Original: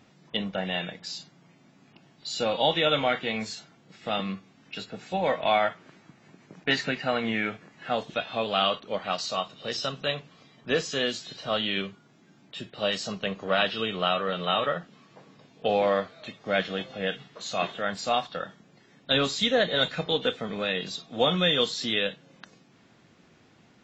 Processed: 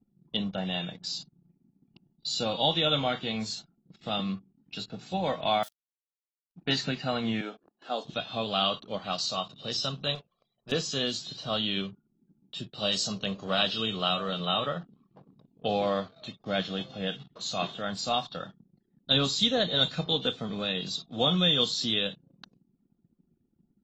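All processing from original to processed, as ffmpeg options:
-filter_complex "[0:a]asettb=1/sr,asplit=3[s0][s1][s2];[s0]atrim=end=5.634[s3];[s1]atrim=start=5.63:end=6.56,asetpts=PTS-STARTPTS,afade=t=in:d=0.004:c=qsin,afade=t=out:st=0.926:d=0.004:c=qsin,acrossover=split=480|3000[s4][s5][s6];[s5]acompressor=threshold=0.02:ratio=5:attack=3.2:release=140:knee=2.83:detection=peak[s7];[s4][s7][s6]amix=inputs=3:normalize=0,aeval=exprs='val(0)*gte(abs(val(0)),0.0133)':c=same,aderivative[s8];[s2]atrim=start=6.556[s9];[s3][s8]acrossfade=d=0.004:c1=hsin:c2=qsin[s10];[s10][s9]acrossfade=d=0.004:c1=qsin:c2=hsin,asettb=1/sr,asplit=3[s11][s12][s13];[s11]atrim=end=7.414[s14];[s12]atrim=start=7.41:end=8.05,asetpts=PTS-STARTPTS,afade=t=in:d=0.004:c=qsin,afade=t=out:st=0.636:d=0.004:c=qsin,highpass=f=280:w=0.5412,highpass=f=280:w=1.3066,equalizer=f=2100:t=o:w=0.84:g=-8[s15];[s13]atrim=start=8.046[s16];[s14][s15]acrossfade=d=0.004:c1=hsin:c2=qsin[s17];[s17][s16]acrossfade=d=0.004:c1=qsin:c2=hsin,asettb=1/sr,asplit=3[s18][s19][s20];[s18]atrim=end=10.154[s21];[s19]atrim=start=10.15:end=10.72,asetpts=PTS-STARTPTS,afade=t=in:d=0.004:c=qsin,afade=t=out:st=0.566:d=0.004:c=qsin,lowshelf=f=360:t=q:w=1.5:g=-7.5,aeval=exprs='(tanh(44.7*val(0)+0.25)-tanh(0.25))/44.7':c=same[s22];[s20]atrim=start=10.716[s23];[s21][s22]acrossfade=d=0.004:c1=hsin:c2=qsin[s24];[s24][s23]acrossfade=d=0.004:c1=qsin:c2=hsin,asettb=1/sr,asplit=3[s25][s26][s27];[s25]atrim=end=12.714[s28];[s26]atrim=start=12.71:end=14.4,asetpts=PTS-STARTPTS,afade=t=in:d=0.004:c=qsin,afade=t=out:st=1.686:d=0.004:c=qsin,highshelf=f=6400:g=10,bandreject=f=58.33:t=h:w=4,bandreject=f=116.66:t=h:w=4,bandreject=f=174.99:t=h:w=4,bandreject=f=233.32:t=h:w=4,bandreject=f=291.65:t=h:w=4,bandreject=f=349.98:t=h:w=4,bandreject=f=408.31:t=h:w=4,bandreject=f=466.64:t=h:w=4,bandreject=f=524.97:t=h:w=4,bandreject=f=583.3:t=h:w=4,bandreject=f=641.63:t=h:w=4[s29];[s27]atrim=start=14.396[s30];[s28][s29]acrossfade=d=0.004:c1=hsin:c2=qsin[s31];[s31][s30]acrossfade=d=0.004:c1=qsin:c2=hsin,bandreject=f=910:w=28,anlmdn=0.00631,equalizer=f=125:t=o:w=1:g=4,equalizer=f=500:t=o:w=1:g=-5,equalizer=f=2000:t=o:w=1:g=-11,equalizer=f=4000:t=o:w=1:g=5"

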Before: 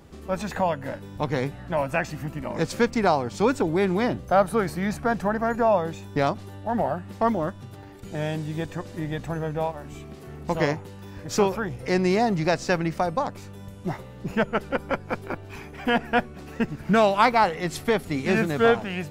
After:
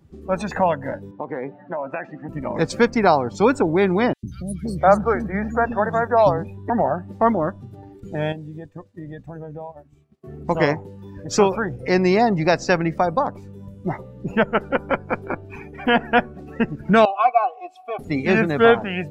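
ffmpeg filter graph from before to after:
-filter_complex "[0:a]asettb=1/sr,asplit=3[s0][s1][s2];[s0]atrim=end=1.114[s3];[s1]atrim=start=1.11:end=2.29,asetpts=PTS-STARTPTS,afade=t=in:d=0.004:c=qsin,afade=t=out:st=1.176:d=0.004:c=qsin,highpass=260,lowpass=2200,acompressor=threshold=0.0447:ratio=10:attack=3.2:release=140:knee=1:detection=peak[s4];[s2]atrim=start=2.286[s5];[s3][s4]acrossfade=d=0.004:c1=hsin:c2=qsin[s6];[s6][s5]acrossfade=d=0.004:c1=qsin:c2=hsin,asettb=1/sr,asplit=3[s7][s8][s9];[s7]atrim=end=4.134[s10];[s8]atrim=start=4.13:end=6.7,asetpts=PTS-STARTPTS,afade=t=in:d=0.004:c=qsin,afade=t=out:st=2.566:d=0.004:c=qsin,equalizer=f=78:w=3.6:g=8.5,acrossover=split=280|2800[s11][s12][s13];[s11]adelay=100[s14];[s12]adelay=520[s15];[s14][s15][s13]amix=inputs=3:normalize=0,atrim=end_sample=113337[s16];[s9]atrim=start=6.696[s17];[s10][s16]acrossfade=d=0.004:c1=hsin:c2=qsin[s18];[s18][s17]acrossfade=d=0.004:c1=qsin:c2=hsin,asettb=1/sr,asplit=3[s19][s20][s21];[s19]atrim=end=8.324[s22];[s20]atrim=start=8.32:end=10.24,asetpts=PTS-STARTPTS,afade=t=in:d=0.004:c=qsin,afade=t=out:st=1.916:d=0.004:c=qsin,agate=range=0.0224:threshold=0.0282:ratio=3:release=100:detection=peak,acompressor=threshold=0.0178:ratio=6:attack=3.2:release=140:knee=1:detection=peak[s23];[s21]atrim=start=10.236[s24];[s22][s23]acrossfade=d=0.004:c1=hsin:c2=qsin[s25];[s25][s24]acrossfade=d=0.004:c1=qsin:c2=hsin,asettb=1/sr,asplit=3[s26][s27][s28];[s26]atrim=end=17.054[s29];[s27]atrim=start=17.05:end=17.99,asetpts=PTS-STARTPTS,afade=t=in:d=0.004:c=qsin,afade=t=out:st=0.936:d=0.004:c=qsin,asplit=3[s30][s31][s32];[s30]bandpass=f=730:t=q:w=8,volume=1[s33];[s31]bandpass=f=1090:t=q:w=8,volume=0.501[s34];[s32]bandpass=f=2440:t=q:w=8,volume=0.355[s35];[s33][s34][s35]amix=inputs=3:normalize=0,aemphasis=mode=production:type=75fm,aecho=1:1:2.7:0.65,atrim=end_sample=41454[s36];[s28]atrim=start=17.986[s37];[s29][s36]acrossfade=d=0.004:c1=hsin:c2=qsin[s38];[s38][s37]acrossfade=d=0.004:c1=qsin:c2=hsin,afftdn=nr=18:nf=-39,lowshelf=f=120:g=-6,volume=1.88"

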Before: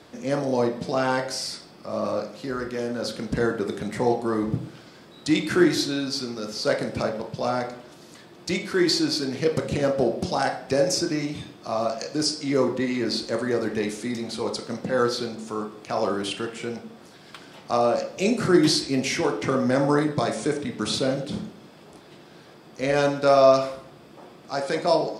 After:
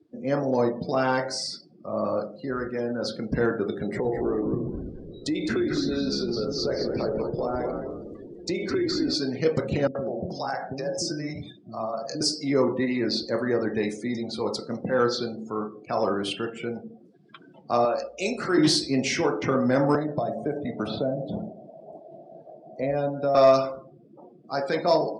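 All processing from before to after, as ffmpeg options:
-filter_complex "[0:a]asettb=1/sr,asplit=3[s0][s1][s2];[s0]atrim=end=3.834[s3];[s1]atrim=start=3.83:end=9.14,asetpts=PTS-STARTPTS,afade=t=in:d=0.004:c=qsin,afade=t=out:st=5.306:d=0.004:c=qsin,equalizer=f=410:t=o:w=0.69:g=11,acompressor=threshold=0.0631:ratio=5:attack=3.2:release=140:knee=1:detection=peak,asplit=6[s4][s5][s6][s7][s8][s9];[s5]adelay=210,afreqshift=-77,volume=0.531[s10];[s6]adelay=420,afreqshift=-154,volume=0.219[s11];[s7]adelay=630,afreqshift=-231,volume=0.0891[s12];[s8]adelay=840,afreqshift=-308,volume=0.0367[s13];[s9]adelay=1050,afreqshift=-385,volume=0.015[s14];[s4][s10][s11][s12][s13][s14]amix=inputs=6:normalize=0,atrim=end_sample=234171[s15];[s2]atrim=start=9.136[s16];[s3][s15]acrossfade=d=0.004:c1=hsin:c2=qsin[s17];[s17][s16]acrossfade=d=0.004:c1=qsin:c2=hsin,asettb=1/sr,asplit=3[s18][s19][s20];[s18]atrim=end=9.874[s21];[s19]atrim=start=9.87:end=12.21,asetpts=PTS-STARTPTS,afade=t=in:d=0.004:c=qsin,afade=t=out:st=2.336:d=0.004:c=qsin,equalizer=f=2700:w=2.3:g=-3,acompressor=threshold=0.0501:ratio=2.5:attack=3.2:release=140:knee=1:detection=peak,acrossover=split=360[s22][s23];[s23]adelay=80[s24];[s22][s24]amix=inputs=2:normalize=0,atrim=end_sample=103194[s25];[s20]atrim=start=12.206[s26];[s21][s25]acrossfade=d=0.004:c1=hsin:c2=qsin[s27];[s27][s26]acrossfade=d=0.004:c1=qsin:c2=hsin,asettb=1/sr,asplit=3[s28][s29][s30];[s28]atrim=end=17.854[s31];[s29]atrim=start=17.85:end=18.58,asetpts=PTS-STARTPTS,afade=t=in:d=0.004:c=qsin,afade=t=out:st=0.726:d=0.004:c=qsin,highpass=f=590:p=1,aeval=exprs='val(0)+0.00158*(sin(2*PI*60*n/s)+sin(2*PI*2*60*n/s)/2+sin(2*PI*3*60*n/s)/3+sin(2*PI*4*60*n/s)/4+sin(2*PI*5*60*n/s)/5)':c=same[s32];[s30]atrim=start=18.576[s33];[s31][s32]acrossfade=d=0.004:c1=hsin:c2=qsin[s34];[s34][s33]acrossfade=d=0.004:c1=qsin:c2=hsin,asettb=1/sr,asplit=3[s35][s36][s37];[s35]atrim=end=19.954[s38];[s36]atrim=start=19.95:end=23.35,asetpts=PTS-STARTPTS,afade=t=in:d=0.004:c=qsin,afade=t=out:st=3.396:d=0.004:c=qsin,equalizer=f=650:w=3.4:g=15,acrossover=split=300|3000[s39][s40][s41];[s39]acompressor=threshold=0.0355:ratio=4[s42];[s40]acompressor=threshold=0.0355:ratio=4[s43];[s41]acompressor=threshold=0.00447:ratio=4[s44];[s42][s43][s44]amix=inputs=3:normalize=0[s45];[s37]atrim=start=23.346[s46];[s38][s45]acrossfade=d=0.004:c1=hsin:c2=qsin[s47];[s47][s46]acrossfade=d=0.004:c1=qsin:c2=hsin,afftdn=nr=32:nf=-39,acontrast=39,volume=0.531"

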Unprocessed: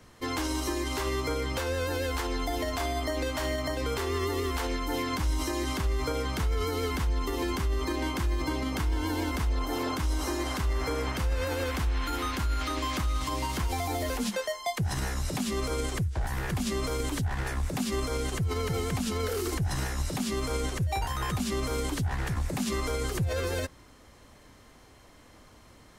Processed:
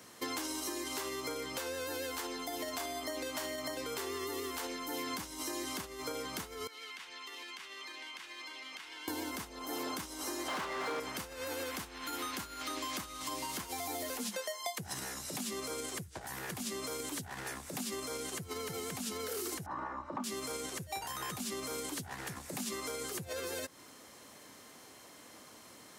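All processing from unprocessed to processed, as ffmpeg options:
-filter_complex "[0:a]asettb=1/sr,asplit=3[s0][s1][s2];[s0]atrim=end=6.674[s3];[s1]atrim=start=6.67:end=9.08,asetpts=PTS-STARTPTS,afade=t=in:d=0.004:c=qsin,afade=t=out:st=2.406:d=0.004:c=qsin,bandpass=f=2600:t=q:w=1.4,acompressor=threshold=0.00562:ratio=5:attack=3.2:release=140:knee=1:detection=peak[s4];[s2]atrim=start=9.076[s5];[s3][s4]acrossfade=d=0.004:c1=hsin:c2=qsin[s6];[s6][s5]acrossfade=d=0.004:c1=qsin:c2=hsin,asettb=1/sr,asplit=3[s7][s8][s9];[s7]atrim=end=10.484[s10];[s8]atrim=start=10.48:end=11,asetpts=PTS-STARTPTS,afade=t=in:d=0.004:c=qsin,afade=t=out:st=0.516:d=0.004:c=qsin,equalizer=f=1800:w=0.31:g=5.5,asplit=2[s11][s12];[s12]highpass=f=720:p=1,volume=15.8,asoftclip=type=tanh:threshold=0.133[s13];[s11][s13]amix=inputs=2:normalize=0,lowpass=f=1100:p=1,volume=0.501[s14];[s9]atrim=start=10.996[s15];[s10][s14]acrossfade=d=0.004:c1=hsin:c2=qsin[s16];[s16][s15]acrossfade=d=0.004:c1=qsin:c2=hsin,asettb=1/sr,asplit=3[s17][s18][s19];[s17]atrim=end=19.664[s20];[s18]atrim=start=19.66:end=20.24,asetpts=PTS-STARTPTS,afade=t=in:d=0.004:c=qsin,afade=t=out:st=0.576:d=0.004:c=qsin,lowpass=f=1100:t=q:w=6.1,aecho=1:1:3.4:0.53,atrim=end_sample=25578[s21];[s19]atrim=start=20.236[s22];[s20][s21]acrossfade=d=0.004:c1=hsin:c2=qsin[s23];[s23][s22]acrossfade=d=0.004:c1=qsin:c2=hsin,highshelf=f=5200:g=10,acompressor=threshold=0.0178:ratio=6,highpass=200"

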